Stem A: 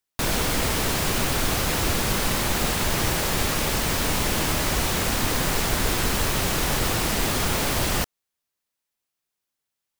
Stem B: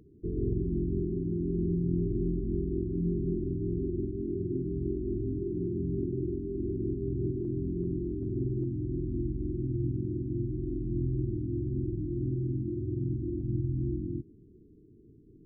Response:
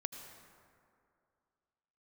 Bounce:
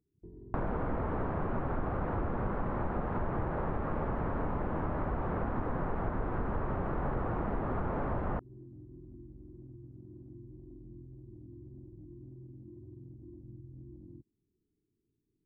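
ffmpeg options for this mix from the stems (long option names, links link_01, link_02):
-filter_complex "[0:a]lowpass=frequency=1300:width=0.5412,lowpass=frequency=1300:width=1.3066,adelay=350,volume=1.5dB[link_01];[1:a]alimiter=level_in=0.5dB:limit=-24dB:level=0:latency=1:release=111,volume=-0.5dB,afwtdn=0.0141,acompressor=threshold=-44dB:ratio=2,volume=-9dB[link_02];[link_01][link_02]amix=inputs=2:normalize=0,acompressor=threshold=-31dB:ratio=4"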